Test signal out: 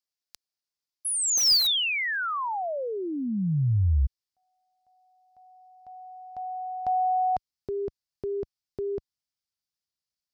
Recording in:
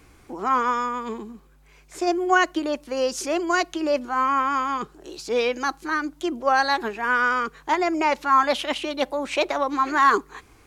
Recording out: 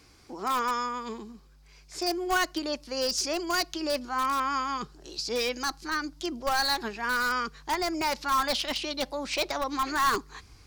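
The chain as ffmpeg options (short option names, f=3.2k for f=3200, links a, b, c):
-filter_complex "[0:a]highpass=f=46:p=1,equalizer=f=4.9k:w=1.8:g=13.5,asplit=2[a][b];[b]aeval=exprs='(mod(5.01*val(0)+1,2)-1)/5.01':c=same,volume=-9dB[c];[a][c]amix=inputs=2:normalize=0,asubboost=boost=3.5:cutoff=170,volume=-8dB"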